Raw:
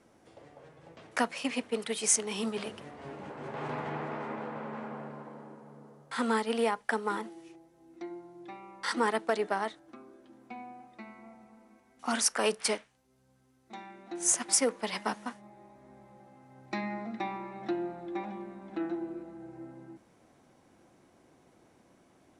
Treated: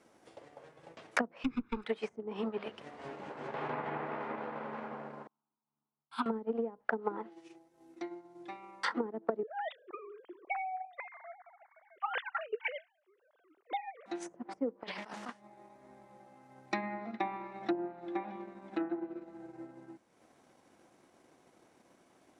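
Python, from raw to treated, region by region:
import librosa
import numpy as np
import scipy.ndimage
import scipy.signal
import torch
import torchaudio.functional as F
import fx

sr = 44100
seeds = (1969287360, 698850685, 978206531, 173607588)

y = fx.chain(x, sr, fx.lower_of_two(delay_ms=0.55),
    fx.peak_eq(hz=570.0, db=-13.5, octaves=0.86),
    fx.comb(ms=0.8, depth=0.97), at=(1.44, 1.84))
y = fx.chain(y, sr, fx.fixed_phaser(hz=1900.0, stages=6),
    fx.upward_expand(threshold_db=-51.0, expansion=2.5), at=(5.27, 6.26))
y = fx.chain(y, sr, fx.sine_speech(),
    fx.over_compress(threshold_db=-37.0, ratio=-1.0), at=(9.43, 14.06))
y = fx.chain(y, sr, fx.over_compress(threshold_db=-42.0, ratio=-1.0),
    fx.doppler_dist(depth_ms=0.17), at=(14.83, 15.29))
y = fx.env_lowpass_down(y, sr, base_hz=340.0, full_db=-25.5)
y = fx.transient(y, sr, attack_db=4, sustain_db=-6)
y = fx.low_shelf(y, sr, hz=190.0, db=-11.0)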